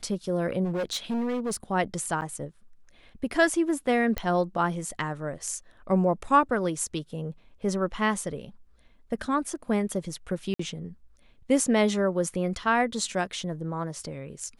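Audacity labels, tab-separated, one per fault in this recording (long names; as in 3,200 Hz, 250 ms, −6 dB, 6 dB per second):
0.640000	1.560000	clipping −25.5 dBFS
2.210000	2.220000	drop-out 9.1 ms
4.180000	4.180000	click −14 dBFS
10.540000	10.590000	drop-out 54 ms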